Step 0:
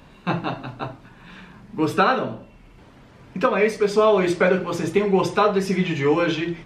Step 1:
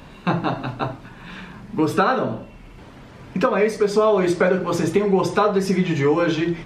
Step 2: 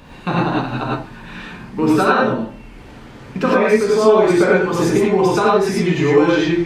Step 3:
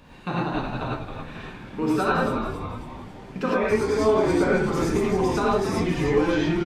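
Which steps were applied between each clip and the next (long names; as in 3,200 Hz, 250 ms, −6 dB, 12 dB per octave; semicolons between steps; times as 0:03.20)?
dynamic equaliser 2,700 Hz, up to −6 dB, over −40 dBFS, Q 1.4; downward compressor 2 to 1, threshold −24 dBFS, peak gain reduction 6.5 dB; level +6 dB
reverb whose tail is shaped and stops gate 130 ms rising, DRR −4.5 dB; level −1 dB
echo with shifted repeats 272 ms, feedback 54%, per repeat −140 Hz, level −7.5 dB; level −8.5 dB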